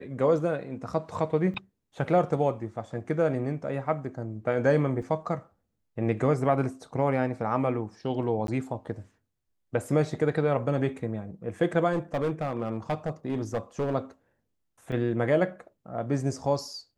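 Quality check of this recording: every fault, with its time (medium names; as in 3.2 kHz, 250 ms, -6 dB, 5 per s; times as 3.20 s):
1.54–1.55 s: dropout 5.8 ms
5.02 s: dropout 4.9 ms
8.47–8.48 s: dropout 12 ms
11.92–13.94 s: clipped -23 dBFS
14.92 s: dropout 2.8 ms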